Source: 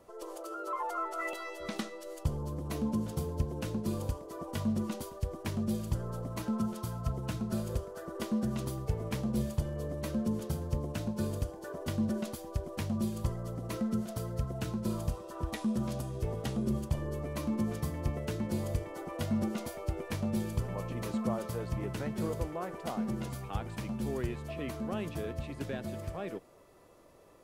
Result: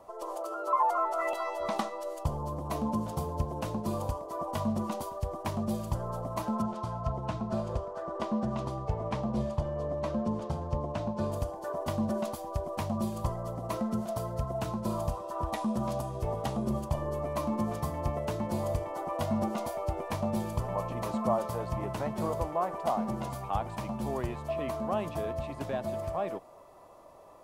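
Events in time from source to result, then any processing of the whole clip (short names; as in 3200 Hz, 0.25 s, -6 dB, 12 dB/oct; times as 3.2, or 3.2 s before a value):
1.38–2.09 bell 920 Hz +5 dB 1 oct
6.62–11.32 air absorption 93 m
whole clip: band shelf 830 Hz +10.5 dB 1.2 oct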